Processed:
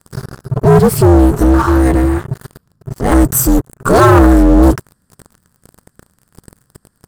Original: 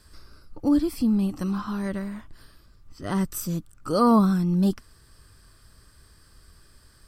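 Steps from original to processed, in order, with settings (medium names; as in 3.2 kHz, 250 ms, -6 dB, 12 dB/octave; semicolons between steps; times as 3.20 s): ring modulator 130 Hz; waveshaping leveller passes 5; high-order bell 3.4 kHz -8.5 dB; trim +6.5 dB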